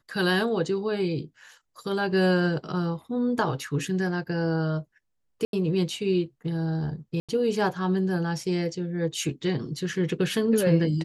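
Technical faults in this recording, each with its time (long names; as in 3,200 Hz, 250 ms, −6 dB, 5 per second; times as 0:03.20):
0:05.45–0:05.53: drop-out 82 ms
0:07.20–0:07.29: drop-out 86 ms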